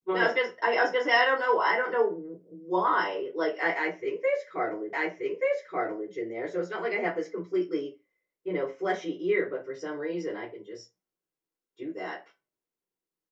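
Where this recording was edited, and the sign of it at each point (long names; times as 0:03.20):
0:04.93: the same again, the last 1.18 s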